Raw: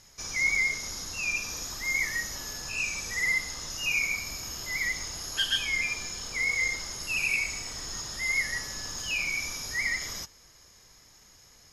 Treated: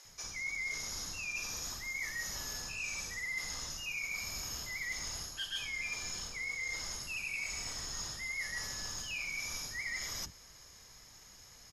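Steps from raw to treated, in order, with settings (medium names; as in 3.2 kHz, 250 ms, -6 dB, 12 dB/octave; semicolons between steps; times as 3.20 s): reverse; compression 6:1, threshold -37 dBFS, peak gain reduction 14 dB; reverse; bands offset in time highs, lows 50 ms, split 340 Hz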